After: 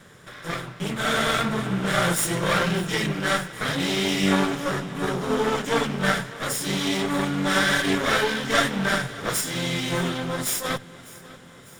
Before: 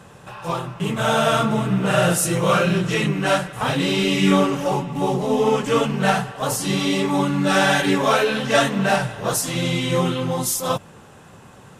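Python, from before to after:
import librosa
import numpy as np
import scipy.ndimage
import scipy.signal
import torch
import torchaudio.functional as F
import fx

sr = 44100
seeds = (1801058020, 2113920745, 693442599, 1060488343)

y = fx.lower_of_two(x, sr, delay_ms=0.56)
y = fx.low_shelf(y, sr, hz=250.0, db=-6.5)
y = fx.hum_notches(y, sr, base_hz=60, count=2)
y = fx.echo_feedback(y, sr, ms=601, feedback_pct=59, wet_db=-20.5)
y = y * librosa.db_to_amplitude(-1.0)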